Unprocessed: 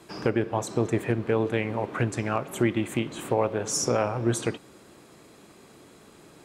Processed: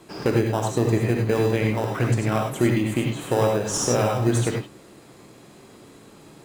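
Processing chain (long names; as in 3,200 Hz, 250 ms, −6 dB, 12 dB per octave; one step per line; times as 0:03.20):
in parallel at −8.5 dB: sample-rate reduction 2,200 Hz, jitter 0%
on the sum: reverb whose tail is shaped and stops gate 120 ms rising, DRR 1.5 dB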